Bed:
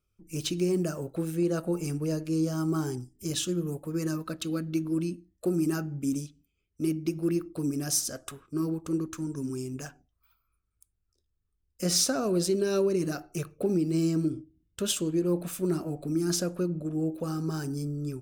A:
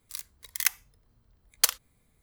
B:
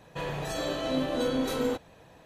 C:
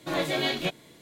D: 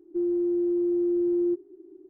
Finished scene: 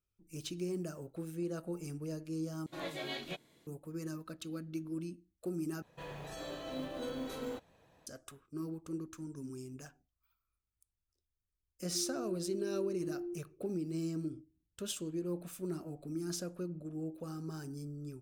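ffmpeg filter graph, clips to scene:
ffmpeg -i bed.wav -i cue0.wav -i cue1.wav -i cue2.wav -i cue3.wav -filter_complex "[0:a]volume=-11dB[link_01];[2:a]acrusher=bits=7:mode=log:mix=0:aa=0.000001[link_02];[link_01]asplit=3[link_03][link_04][link_05];[link_03]atrim=end=2.664[link_06];[3:a]atrim=end=1.01,asetpts=PTS-STARTPTS,volume=-13.5dB[link_07];[link_04]atrim=start=3.666:end=5.824[link_08];[link_02]atrim=end=2.25,asetpts=PTS-STARTPTS,volume=-12dB[link_09];[link_05]atrim=start=8.066[link_10];[4:a]atrim=end=2.09,asetpts=PTS-STARTPTS,volume=-16.5dB,afade=type=in:duration=0.004:curve=hsin,afade=type=out:start_time=2.086:duration=0.004:curve=hsin,adelay=11800[link_11];[link_06][link_07]acrossfade=duration=0.004:curve1=hsin:curve2=hsin[link_12];[link_12][link_08]acrossfade=duration=0.004:curve1=hsin:curve2=hsin[link_13];[link_13][link_09]acrossfade=duration=0.004:curve1=hsin:curve2=hsin[link_14];[link_14][link_10]acrossfade=duration=0.004:curve1=hsin:curve2=hsin[link_15];[link_15][link_11]amix=inputs=2:normalize=0" out.wav

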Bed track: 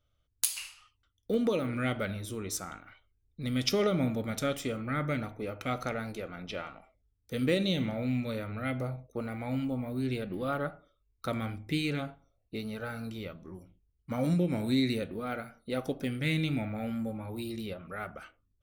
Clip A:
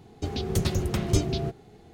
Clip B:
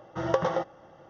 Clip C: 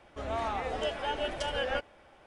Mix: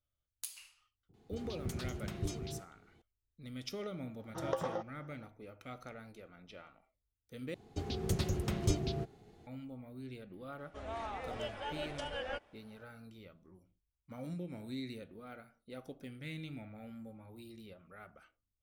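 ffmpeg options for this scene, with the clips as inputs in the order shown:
ffmpeg -i bed.wav -i cue0.wav -i cue1.wav -i cue2.wav -filter_complex "[1:a]asplit=2[link_01][link_02];[0:a]volume=-14.5dB[link_03];[link_01]acrossover=split=600[link_04][link_05];[link_05]adelay=50[link_06];[link_04][link_06]amix=inputs=2:normalize=0[link_07];[2:a]equalizer=frequency=2200:width_type=o:width=0.92:gain=-4[link_08];[link_03]asplit=2[link_09][link_10];[link_09]atrim=end=7.544[link_11];[link_02]atrim=end=1.93,asetpts=PTS-STARTPTS,volume=-8dB[link_12];[link_10]atrim=start=9.466[link_13];[link_07]atrim=end=1.93,asetpts=PTS-STARTPTS,volume=-14dB,afade=type=in:duration=0.004:curve=hsin,afade=type=out:start_time=1.926:duration=0.004:curve=hsin,adelay=1090[link_14];[link_08]atrim=end=1.09,asetpts=PTS-STARTPTS,volume=-10dB,afade=type=in:duration=0.004:curve=hsin,afade=type=out:start_time=1.086:duration=0.004:curve=hsin,adelay=4190[link_15];[3:a]atrim=end=2.26,asetpts=PTS-STARTPTS,volume=-8.5dB,afade=type=in:duration=0.004:curve=hsin,afade=type=out:start_time=2.256:duration=0.004:curve=hsin,adelay=466578S[link_16];[link_11][link_12]acrossfade=duration=0.004:curve1=hsin:curve2=hsin[link_17];[link_17][link_13]acrossfade=duration=0.004:curve1=hsin:curve2=hsin[link_18];[link_18][link_14][link_15][link_16]amix=inputs=4:normalize=0" out.wav

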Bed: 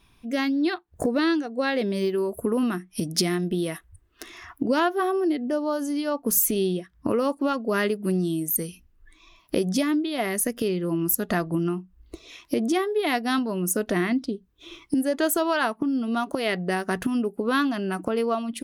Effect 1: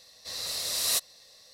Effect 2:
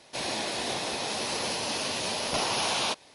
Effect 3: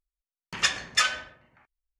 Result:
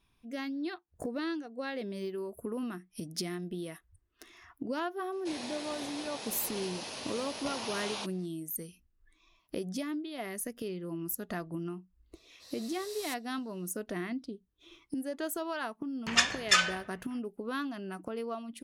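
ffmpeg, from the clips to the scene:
ffmpeg -i bed.wav -i cue0.wav -i cue1.wav -i cue2.wav -filter_complex "[0:a]volume=-12.5dB[link_01];[2:a]atrim=end=3.14,asetpts=PTS-STARTPTS,volume=-10.5dB,afade=type=in:duration=0.004:curve=hsin,afade=type=out:start_time=3.136:duration=0.004:curve=hsin,adelay=5120[link_02];[1:a]atrim=end=1.53,asetpts=PTS-STARTPTS,volume=-16.5dB,afade=type=in:duration=0.004:curve=hsin,afade=type=out:start_time=1.526:duration=0.004:curve=hsin,adelay=12150[link_03];[3:a]atrim=end=1.99,asetpts=PTS-STARTPTS,volume=-1dB,afade=type=in:duration=0.004:curve=hsin,afade=type=out:start_time=1.986:duration=0.004:curve=hsin,adelay=15540[link_04];[link_01][link_02][link_03][link_04]amix=inputs=4:normalize=0" out.wav

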